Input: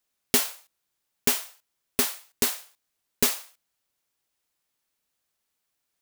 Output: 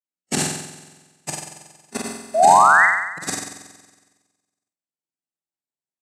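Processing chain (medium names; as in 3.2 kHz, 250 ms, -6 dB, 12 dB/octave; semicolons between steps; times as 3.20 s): time reversed locally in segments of 32 ms; spectral noise reduction 16 dB; harmonic-percussive split percussive +4 dB; in parallel at -6.5 dB: sample-rate reducer 1.2 kHz, jitter 0%; on the sum: granulator, grains 20 per s, pitch spread up and down by 0 st; painted sound rise, 2.34–2.86 s, 610–2100 Hz -17 dBFS; cabinet simulation 160–9600 Hz, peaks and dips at 160 Hz +9 dB, 320 Hz +4 dB, 460 Hz -7 dB, 780 Hz +4 dB, 3.3 kHz -5 dB, 7.9 kHz +8 dB; on a send: flutter echo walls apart 7.9 m, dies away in 1.4 s; on the sum: upward expansion 1.5:1, over -30 dBFS; trim +1 dB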